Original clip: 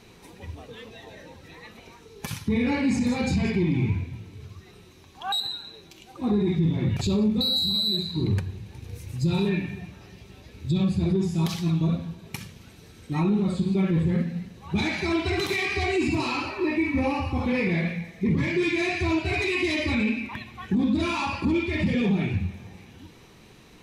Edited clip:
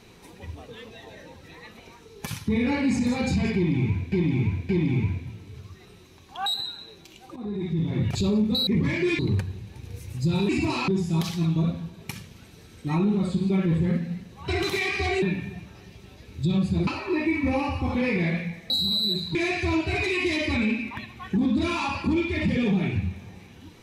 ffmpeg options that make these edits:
-filter_complex "[0:a]asplit=13[a][b][c][d][e][f][g][h][i][j][k][l][m];[a]atrim=end=4.122[n];[b]atrim=start=3.548:end=4.122[o];[c]atrim=start=3.548:end=6.22,asetpts=PTS-STARTPTS,afade=t=out:st=2.668:d=0.004:c=hsin:silence=0.199526[p];[d]atrim=start=6.22:end=7.532,asetpts=PTS-STARTPTS,afade=t=in:d=0.68:silence=0.199526[q];[e]atrim=start=18.208:end=18.732[r];[f]atrim=start=8.178:end=9.482[s];[g]atrim=start=15.988:end=16.382[t];[h]atrim=start=11.128:end=14.732[u];[i]atrim=start=15.248:end=15.992[v];[j]atrim=start=9.478:end=11.132[w];[k]atrim=start=16.378:end=18.212[x];[l]atrim=start=7.528:end=8.182[y];[m]atrim=start=18.728[z];[n][o]acrossfade=d=0.004:c1=hsin:c2=hsin[aa];[p][q]concat=n=2:v=0:a=1[ab];[aa][ab]acrossfade=d=0.004:c1=hsin:c2=hsin[ac];[ac][r]acrossfade=d=0.004:c1=hsin:c2=hsin[ad];[ad][s]acrossfade=d=0.004:c1=hsin:c2=hsin[ae];[ae][t]acrossfade=d=0.004:c1=hsin:c2=hsin[af];[af][u]acrossfade=d=0.004:c1=hsin:c2=hsin[ag];[ag][v]acrossfade=d=0.004:c1=hsin:c2=hsin[ah];[ah][w]acrossfade=d=0.004:c1=hsin:c2=hsin[ai];[ai][x]acrossfade=d=0.004:c1=hsin:c2=hsin[aj];[aj][y]acrossfade=d=0.004:c1=hsin:c2=hsin[ak];[ak][z]acrossfade=d=0.004:c1=hsin:c2=hsin"

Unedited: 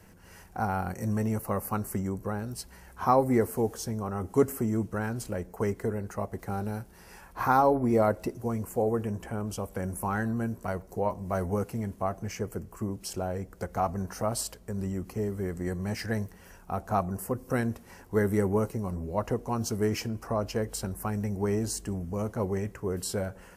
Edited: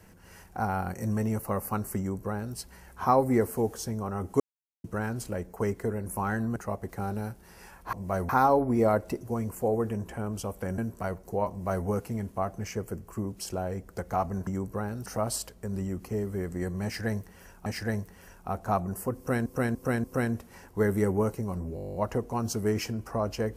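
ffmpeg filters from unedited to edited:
-filter_complex "[0:a]asplit=24[a][b][c][d][e][f][g][h][i][j][k][l][m][n][o][p][q][r][s][t][u][v][w][x];[a]atrim=end=4.4,asetpts=PTS-STARTPTS,afade=t=out:st=4.396:d=0.004:c=hsin[y];[b]atrim=start=4.4:end=4.84,asetpts=PTS-STARTPTS,volume=0[z];[c]atrim=start=4.84:end=6.062,asetpts=PTS-STARTPTS,afade=t=in:d=0.004:c=hsin[aa];[d]atrim=start=9.918:end=10.422[ab];[e]atrim=start=6.058:end=7.432[ac];[f]atrim=start=11.138:end=11.502[ad];[g]atrim=start=7.428:end=9.922[ae];[h]atrim=start=10.418:end=14.112[af];[i]atrim=start=1.978:end=2.572[ag];[j]atrim=start=14.108:end=16.712[ah];[k]atrim=start=15.888:end=17.692[ai];[l]atrim=start=17.398:end=17.692[aj];[m]atrim=start=17.398:end=17.692[ak];[n]atrim=start=17.398:end=19.132[al];[o]atrim=start=19.108:end=19.132[am];[p]atrim=start=19.108:end=19.132[an];[q]atrim=start=19.108:end=19.132[ao];[r]atrim=start=19.108:end=19.132[ap];[s]atrim=start=19.108:end=19.132[aq];[t]atrim=start=19.108:end=19.132[ar];[u]atrim=start=19.108:end=19.132[as];[v]atrim=start=19.108:end=19.132[at];[w]atrim=start=19.108:end=19.132[au];[x]atrim=start=19.108[av];[y][z][aa]concat=n=3:v=0:a=1[aw];[aw][ab]acrossfade=d=0.004:c1=hsin:c2=hsin[ax];[ax][ac]acrossfade=d=0.004:c1=hsin:c2=hsin[ay];[ay][ad]acrossfade=d=0.004:c1=hsin:c2=hsin[az];[az][ae]acrossfade=d=0.004:c1=hsin:c2=hsin[ba];[ba][af]acrossfade=d=0.004:c1=hsin:c2=hsin[bb];[bb][ag]acrossfade=d=0.004:c1=hsin:c2=hsin[bc];[bc][ah]acrossfade=d=0.004:c1=hsin:c2=hsin[bd];[bd][ai]acrossfade=d=0.004:c1=hsin:c2=hsin[be];[be][aj]acrossfade=d=0.004:c1=hsin:c2=hsin[bf];[bf][ak]acrossfade=d=0.004:c1=hsin:c2=hsin[bg];[bg][al]acrossfade=d=0.004:c1=hsin:c2=hsin[bh];[bh][am]acrossfade=d=0.004:c1=hsin:c2=hsin[bi];[bi][an]acrossfade=d=0.004:c1=hsin:c2=hsin[bj];[bj][ao]acrossfade=d=0.004:c1=hsin:c2=hsin[bk];[bk][ap]acrossfade=d=0.004:c1=hsin:c2=hsin[bl];[bl][aq]acrossfade=d=0.004:c1=hsin:c2=hsin[bm];[bm][ar]acrossfade=d=0.004:c1=hsin:c2=hsin[bn];[bn][as]acrossfade=d=0.004:c1=hsin:c2=hsin[bo];[bo][at]acrossfade=d=0.004:c1=hsin:c2=hsin[bp];[bp][au]acrossfade=d=0.004:c1=hsin:c2=hsin[bq];[bq][av]acrossfade=d=0.004:c1=hsin:c2=hsin"

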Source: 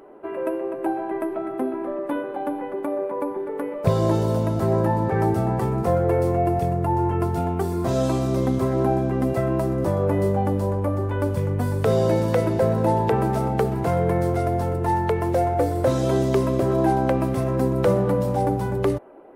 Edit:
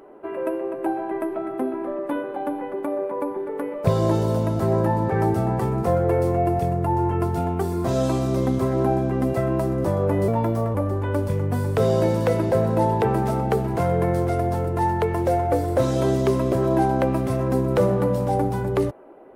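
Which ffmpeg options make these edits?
-filter_complex "[0:a]asplit=3[a][b][c];[a]atrim=end=10.284[d];[b]atrim=start=10.28:end=10.82,asetpts=PTS-STARTPTS,asetrate=51156,aresample=44100,atrim=end_sample=20529,asetpts=PTS-STARTPTS[e];[c]atrim=start=10.816[f];[d][e]acrossfade=d=0.004:c1=hsin:c2=hsin[g];[g][f]acrossfade=d=0.004:c1=hsin:c2=hsin"

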